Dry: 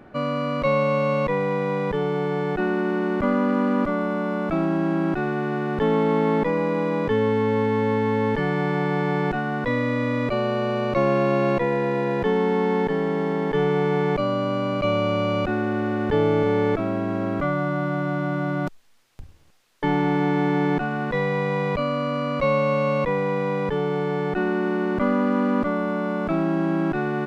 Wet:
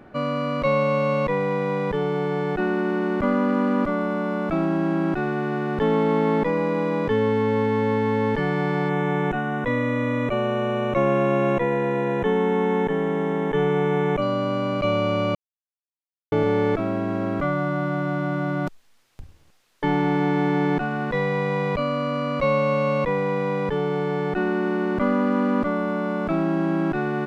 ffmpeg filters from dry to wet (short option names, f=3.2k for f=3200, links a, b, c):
-filter_complex "[0:a]asettb=1/sr,asplit=3[a][b][c];[a]atrim=end=8.894[d];[b]atrim=start=8.89:end=14.22,asetpts=PTS-STARTPTS,afade=t=in:d=0.004:c=qsin,afade=t=out:st=5.326:d=0.004:c=qsin,asuperstop=centerf=4600:order=4:qfactor=2.3[e];[c]atrim=start=14.216[f];[d][e]acrossfade=d=0.004:c1=hsin:c2=qsin[g];[g][f]acrossfade=d=0.004:c1=qsin:c2=hsin,asplit=3[h][i][j];[h]atrim=end=15.35,asetpts=PTS-STARTPTS,afade=t=out:st=15.346:d=0.004:c=hsin[k];[i]atrim=start=15.35:end=16.32,asetpts=PTS-STARTPTS,volume=0[l];[j]atrim=start=16.32,asetpts=PTS-STARTPTS,afade=t=in:d=0.004:c=hsin[m];[k][l][m]concat=n=3:v=0:a=1"